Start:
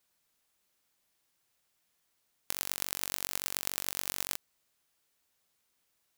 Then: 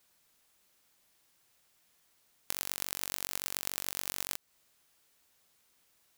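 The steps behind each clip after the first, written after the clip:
downward compressor 2.5 to 1, threshold −38 dBFS, peak gain reduction 8.5 dB
level +6.5 dB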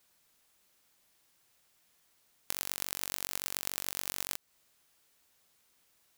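no processing that can be heard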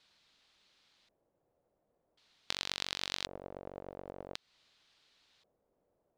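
auto-filter low-pass square 0.46 Hz 560–4,000 Hz
level +1 dB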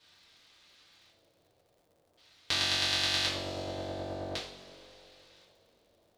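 coupled-rooms reverb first 0.45 s, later 3.3 s, from −18 dB, DRR −8.5 dB
surface crackle 120 per second −58 dBFS

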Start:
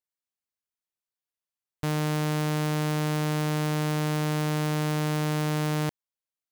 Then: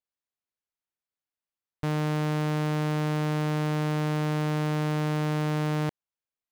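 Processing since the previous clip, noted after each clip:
high-shelf EQ 4,800 Hz −11 dB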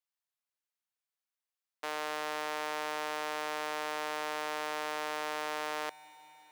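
Bessel high-pass filter 720 Hz, order 4
convolution reverb RT60 5.7 s, pre-delay 136 ms, DRR 14.5 dB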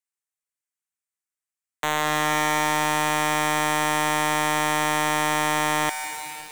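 graphic EQ with 10 bands 500 Hz −7 dB, 2,000 Hz +5 dB, 4,000 Hz −7 dB, 8,000 Hz +10 dB
leveller curve on the samples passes 5
level +6.5 dB

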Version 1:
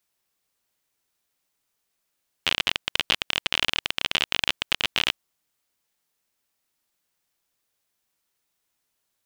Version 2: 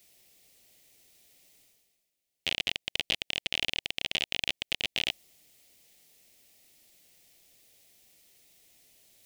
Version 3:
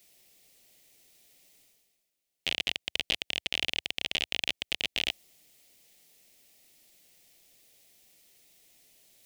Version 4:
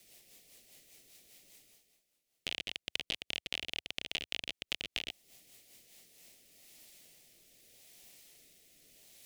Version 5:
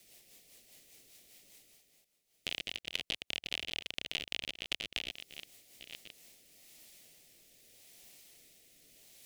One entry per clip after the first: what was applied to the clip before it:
flat-topped bell 1,200 Hz −12.5 dB 1.1 octaves; reversed playback; upward compression, threshold −37 dBFS; reversed playback; level −6 dB
parametric band 78 Hz −5 dB 0.88 octaves
downward compressor 10 to 1, threshold −35 dBFS, peak gain reduction 13 dB; rotating-speaker cabinet horn 5 Hz, later 0.8 Hz, at 0:05.76; level +5 dB
delay that plays each chunk backwards 682 ms, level −10.5 dB

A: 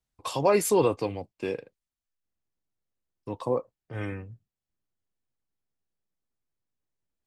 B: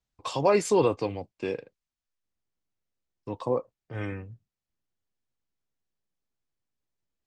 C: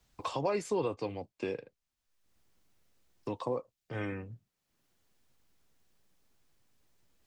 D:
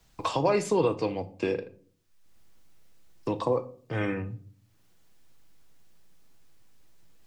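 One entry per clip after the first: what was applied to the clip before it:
low-pass filter 7,700 Hz 24 dB per octave
multiband upward and downward compressor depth 70%; level −6 dB
rectangular room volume 490 cubic metres, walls furnished, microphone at 0.63 metres; level +7 dB

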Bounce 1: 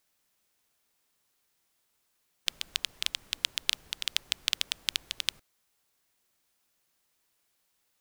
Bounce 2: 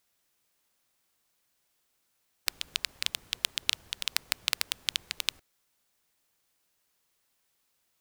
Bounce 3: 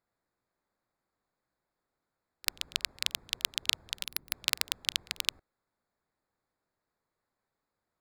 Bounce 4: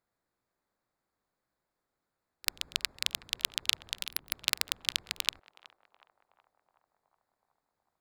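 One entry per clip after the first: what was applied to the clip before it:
sub-harmonics by changed cycles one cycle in 2, inverted
adaptive Wiener filter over 15 samples; echo ahead of the sound 39 ms −22 dB; gain on a spectral selection 0:04.04–0:04.32, 390–11,000 Hz −9 dB
feedback echo with a band-pass in the loop 371 ms, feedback 74%, band-pass 770 Hz, level −15.5 dB

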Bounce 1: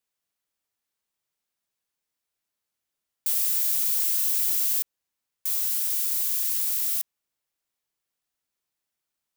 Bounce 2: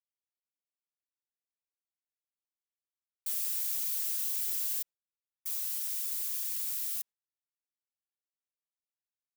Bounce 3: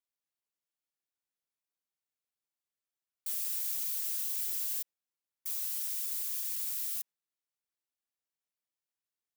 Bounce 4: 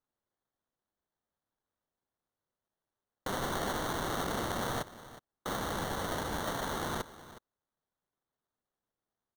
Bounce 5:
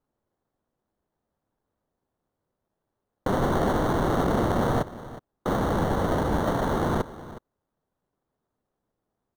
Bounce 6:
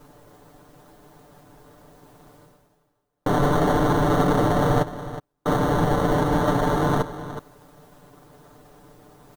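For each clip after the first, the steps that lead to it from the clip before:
flanger 1.1 Hz, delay 3.7 ms, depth 2.9 ms, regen −1%; noise gate with hold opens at −20 dBFS; level −5 dB
high-pass filter 100 Hz; in parallel at +3 dB: brickwall limiter −26 dBFS, peak gain reduction 6 dB; on the sum: level −7.5 dB
sample-rate reduction 2,500 Hz, jitter 0%; single-tap delay 365 ms −16 dB
tilt shelving filter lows +8.5 dB, about 1,400 Hz; level +5.5 dB
reversed playback; upward compression, threshold −31 dBFS; reversed playback; comb filter 6.8 ms, depth 90%; level +1.5 dB

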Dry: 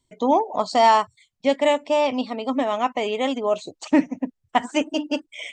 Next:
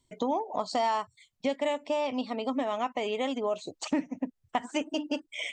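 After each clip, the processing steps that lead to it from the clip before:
downward compressor 3 to 1, threshold −29 dBFS, peak gain reduction 13 dB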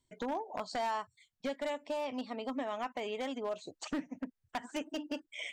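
wave folding −21 dBFS
parametric band 1,600 Hz +6 dB 0.4 octaves
level −7 dB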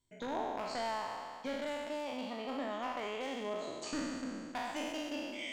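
peak hold with a decay on every bin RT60 2.00 s
level −5 dB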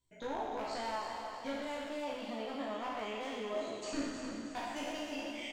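multi-voice chorus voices 6, 0.58 Hz, delay 16 ms, depth 2.3 ms
on a send: repeating echo 316 ms, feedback 49%, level −8 dB
on the sum: level +1.5 dB

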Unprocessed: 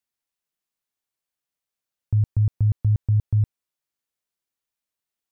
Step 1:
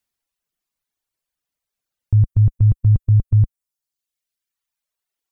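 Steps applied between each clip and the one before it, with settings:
reverb reduction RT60 1.7 s
low-shelf EQ 66 Hz +10.5 dB
brickwall limiter −14 dBFS, peak gain reduction 4 dB
level +6 dB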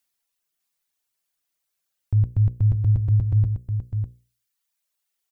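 spectral tilt +1.5 dB per octave
mains-hum notches 60/120/180/240/300/360/420/480/540 Hz
single-tap delay 602 ms −7 dB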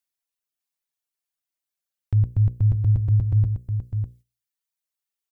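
noise gate −46 dBFS, range −9 dB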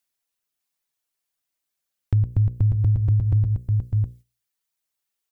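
downward compressor, threshold −22 dBFS, peak gain reduction 7 dB
level +5.5 dB

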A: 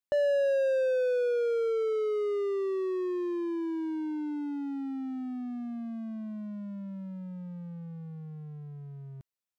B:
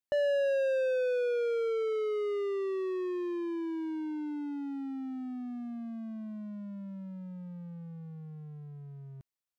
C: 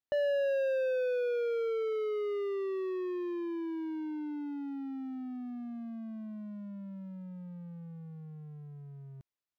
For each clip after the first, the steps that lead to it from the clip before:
dynamic equaliser 2,500 Hz, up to +6 dB, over −54 dBFS, Q 1.2; level −2.5 dB
running median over 5 samples; level −1.5 dB

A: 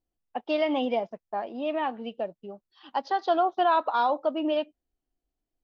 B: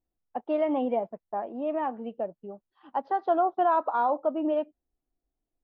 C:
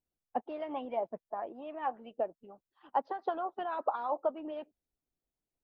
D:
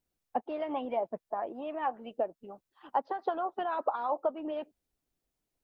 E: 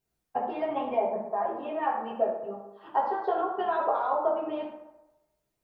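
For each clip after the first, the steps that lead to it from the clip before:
low-pass filter 1,300 Hz 12 dB per octave
harmonic and percussive parts rebalanced harmonic −14 dB
downward compressor 1.5 to 1, threshold −40 dBFS, peak gain reduction 6 dB; level +6 dB
convolution reverb RT60 1.0 s, pre-delay 4 ms, DRR −6 dB; level −2 dB

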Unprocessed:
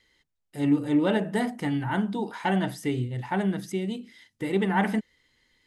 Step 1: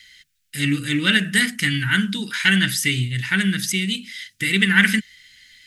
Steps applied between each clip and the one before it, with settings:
drawn EQ curve 180 Hz 0 dB, 820 Hz −25 dB, 1,500 Hz +8 dB, 2,500 Hz +13 dB
level +7 dB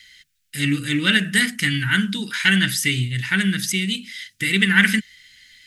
no processing that can be heard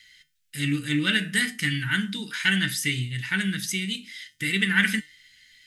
tuned comb filter 150 Hz, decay 0.26 s, harmonics all, mix 60%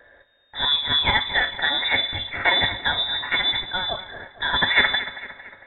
echo with a time of its own for lows and highs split 860 Hz, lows 105 ms, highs 227 ms, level −13.5 dB
log-companded quantiser 6 bits
voice inversion scrambler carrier 3,700 Hz
level +3 dB

